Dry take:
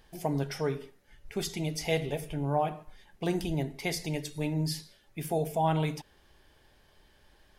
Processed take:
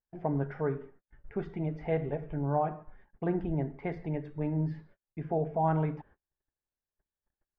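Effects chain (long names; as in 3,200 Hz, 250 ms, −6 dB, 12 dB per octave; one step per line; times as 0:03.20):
Chebyshev low-pass filter 1,600 Hz, order 3
noise gate −55 dBFS, range −36 dB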